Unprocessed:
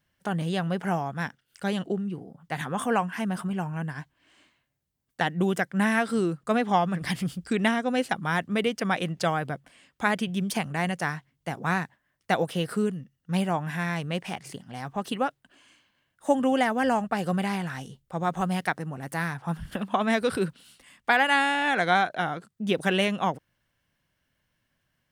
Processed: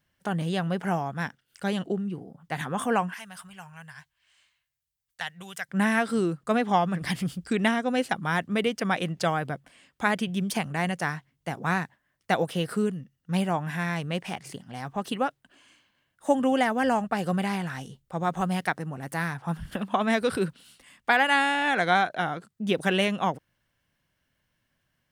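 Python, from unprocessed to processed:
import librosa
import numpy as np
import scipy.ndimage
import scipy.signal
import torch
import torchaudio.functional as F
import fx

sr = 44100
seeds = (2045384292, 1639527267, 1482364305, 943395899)

y = fx.tone_stack(x, sr, knobs='10-0-10', at=(3.14, 5.69))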